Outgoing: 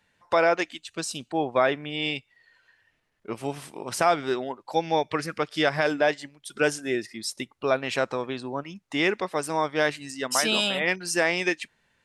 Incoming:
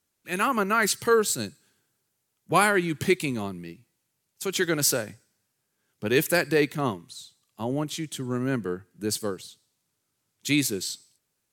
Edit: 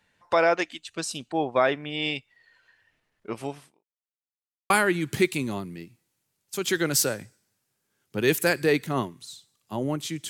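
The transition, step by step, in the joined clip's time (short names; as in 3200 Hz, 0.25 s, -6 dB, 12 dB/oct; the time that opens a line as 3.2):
outgoing
3.42–3.85 fade out quadratic
3.85–4.7 mute
4.7 switch to incoming from 2.58 s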